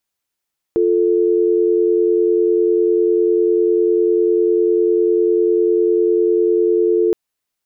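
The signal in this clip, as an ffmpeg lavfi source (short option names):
-f lavfi -i "aevalsrc='0.188*(sin(2*PI*350*t)+sin(2*PI*440*t))':d=6.37:s=44100"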